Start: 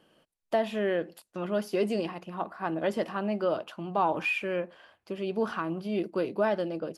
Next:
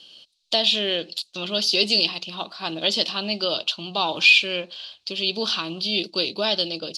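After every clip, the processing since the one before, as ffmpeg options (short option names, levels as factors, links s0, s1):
-af "aexciter=amount=11.6:drive=5.8:freq=2800,lowpass=f=4100:t=q:w=3.4"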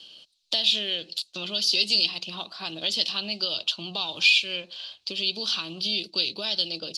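-filter_complex "[0:a]acrossover=split=120|2500[s0][s1][s2];[s1]acompressor=threshold=0.0178:ratio=6[s3];[s2]aphaser=in_gain=1:out_gain=1:delay=2:decay=0.26:speed=0.32:type=sinusoidal[s4];[s0][s3][s4]amix=inputs=3:normalize=0,volume=0.891"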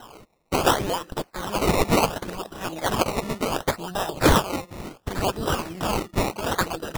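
-af "acrusher=samples=19:mix=1:aa=0.000001:lfo=1:lforange=19:lforate=0.69,volume=1.41"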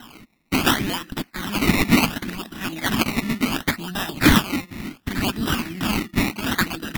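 -af "equalizer=f=250:t=o:w=1:g=12,equalizer=f=500:t=o:w=1:g=-12,equalizer=f=1000:t=o:w=1:g=-3,equalizer=f=2000:t=o:w=1:g=9,equalizer=f=4000:t=o:w=1:g=3,equalizer=f=8000:t=o:w=1:g=-3,equalizer=f=16000:t=o:w=1:g=7"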